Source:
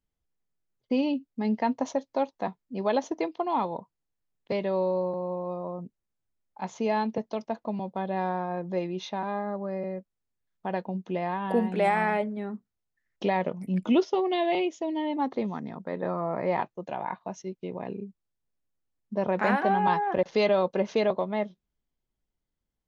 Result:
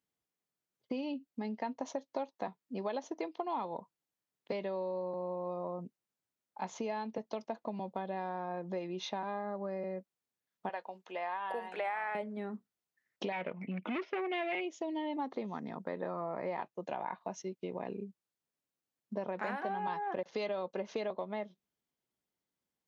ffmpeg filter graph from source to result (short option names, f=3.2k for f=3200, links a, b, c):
-filter_complex "[0:a]asettb=1/sr,asplit=3[a][b][c];[a]atrim=end=10.694[d];[b]atrim=start=10.69:end=12.15,asetpts=PTS-STARTPTS,afade=t=in:d=0.004:c=qsin,afade=t=out:st=1.456:d=0.004:c=qsin,acrossover=split=3200[e][f];[f]acompressor=threshold=-60dB:ratio=4:attack=1:release=60[g];[e][g]amix=inputs=2:normalize=0,highpass=750[h];[c]atrim=start=12.146[i];[d][h]acrossfade=d=0.004:c1=hsin:c2=qsin[j];[j][i]acrossfade=d=0.004:c1=qsin:c2=hsin,asettb=1/sr,asplit=3[k][l][m];[k]atrim=end=13.324[n];[l]atrim=start=13.32:end=14.61,asetpts=PTS-STARTPTS,afade=t=in:d=0.004:c=qsin,afade=t=out:st=1.286:d=0.004:c=qsin,volume=23dB,asoftclip=hard,volume=-23dB,lowpass=f=2.3k:t=q:w=4.5[o];[m]atrim=start=14.606[p];[n][o]acrossfade=d=0.004:c1=hsin:c2=qsin[q];[q][p]acrossfade=d=0.004:c1=qsin:c2=hsin,acompressor=threshold=-33dB:ratio=6,highpass=130,lowshelf=f=200:g=-6"